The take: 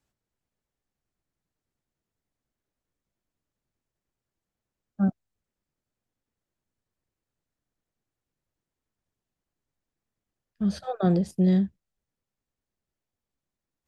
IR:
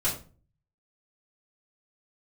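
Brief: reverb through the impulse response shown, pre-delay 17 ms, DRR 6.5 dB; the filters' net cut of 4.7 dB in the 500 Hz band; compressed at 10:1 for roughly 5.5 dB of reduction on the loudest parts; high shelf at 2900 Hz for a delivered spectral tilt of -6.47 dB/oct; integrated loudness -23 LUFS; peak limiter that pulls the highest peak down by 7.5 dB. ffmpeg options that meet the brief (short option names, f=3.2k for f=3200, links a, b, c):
-filter_complex "[0:a]equalizer=f=500:t=o:g=-7,highshelf=f=2.9k:g=5,acompressor=threshold=-24dB:ratio=10,alimiter=level_in=2.5dB:limit=-24dB:level=0:latency=1,volume=-2.5dB,asplit=2[a][b];[1:a]atrim=start_sample=2205,adelay=17[c];[b][c]afir=irnorm=-1:irlink=0,volume=-15dB[d];[a][d]amix=inputs=2:normalize=0,volume=11dB"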